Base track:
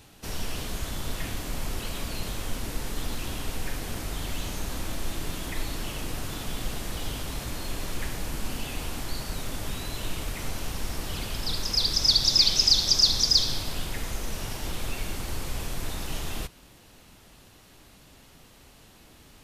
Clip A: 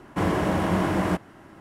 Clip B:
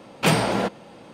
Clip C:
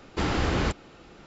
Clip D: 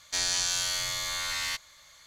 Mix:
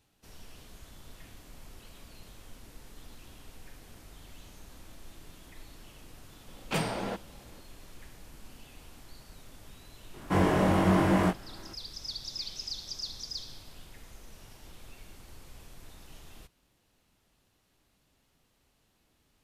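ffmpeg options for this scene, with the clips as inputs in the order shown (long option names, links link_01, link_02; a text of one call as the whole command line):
ffmpeg -i bed.wav -i cue0.wav -i cue1.wav -filter_complex "[0:a]volume=-18dB[link_01];[1:a]asplit=2[link_02][link_03];[link_03]adelay=21,volume=-3dB[link_04];[link_02][link_04]amix=inputs=2:normalize=0[link_05];[2:a]atrim=end=1.13,asetpts=PTS-STARTPTS,volume=-11.5dB,afade=type=in:duration=0.004:curve=hsin,afade=type=out:start_time=1.126:duration=0.004:curve=hsin,adelay=6480[link_06];[link_05]atrim=end=1.6,asetpts=PTS-STARTPTS,volume=-3dB,afade=type=in:duration=0.004:curve=hsin,afade=type=out:start_time=1.596:duration=0.004:curve=hsin,adelay=10140[link_07];[link_01][link_06][link_07]amix=inputs=3:normalize=0" out.wav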